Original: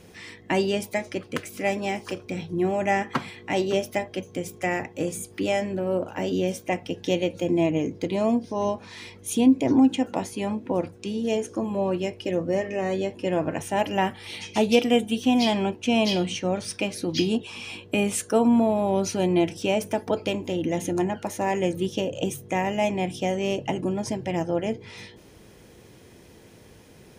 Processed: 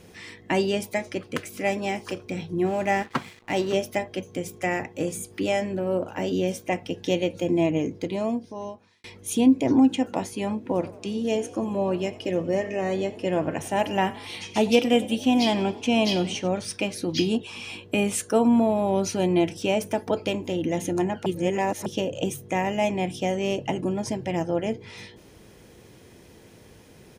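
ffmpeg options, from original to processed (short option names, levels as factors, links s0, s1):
-filter_complex "[0:a]asettb=1/sr,asplit=3[s0][s1][s2];[s0]atrim=end=2.664[s3];[s1]atrim=start=2.66:end=3.74,asetpts=PTS-STARTPTS,afade=t=in:d=0.004:c=qsin,afade=t=out:st=1.076:d=0.004:c=qsin,aeval=exprs='sgn(val(0))*max(abs(val(0))-0.00631,0)':c=same[s4];[s2]atrim=start=3.736[s5];[s3][s4]acrossfade=d=0.004:c1=hsin:c2=qsin[s6];[s6][s5]acrossfade=d=0.004:c1=qsin:c2=hsin,asplit=3[s7][s8][s9];[s7]afade=t=out:st=10.68:d=0.02[s10];[s8]asplit=6[s11][s12][s13][s14][s15][s16];[s12]adelay=91,afreqshift=36,volume=0.112[s17];[s13]adelay=182,afreqshift=72,volume=0.0661[s18];[s14]adelay=273,afreqshift=108,volume=0.0389[s19];[s15]adelay=364,afreqshift=144,volume=0.0232[s20];[s16]adelay=455,afreqshift=180,volume=0.0136[s21];[s11][s17][s18][s19][s20][s21]amix=inputs=6:normalize=0,afade=t=in:st=10.68:d=0.02,afade=t=out:st=16.47:d=0.02[s22];[s9]afade=t=in:st=16.47:d=0.02[s23];[s10][s22][s23]amix=inputs=3:normalize=0,asplit=4[s24][s25][s26][s27];[s24]atrim=end=9.04,asetpts=PTS-STARTPTS,afade=t=out:st=7.84:d=1.2[s28];[s25]atrim=start=9.04:end=21.262,asetpts=PTS-STARTPTS,afade=t=in:d=0.004:c=hsin[s29];[s26]atrim=start=21.258:end=21.862,asetpts=PTS-STARTPTS,areverse[s30];[s27]atrim=start=21.858[s31];[s28][s29]concat=n=2:v=0:a=1[s32];[s32][s30]acrossfade=d=0.004:c1=hsin:c2=hsin[s33];[s33][s31]acrossfade=d=0.004:c1=hsin:c2=hsin"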